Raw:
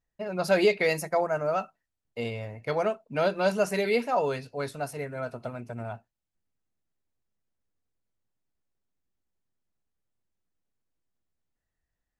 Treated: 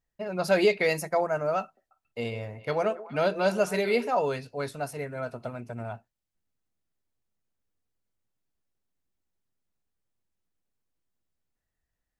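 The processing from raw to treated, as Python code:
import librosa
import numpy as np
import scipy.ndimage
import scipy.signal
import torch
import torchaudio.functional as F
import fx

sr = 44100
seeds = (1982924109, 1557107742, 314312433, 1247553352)

y = fx.echo_stepped(x, sr, ms=139, hz=410.0, octaves=1.4, feedback_pct=70, wet_db=-11, at=(1.63, 4.09))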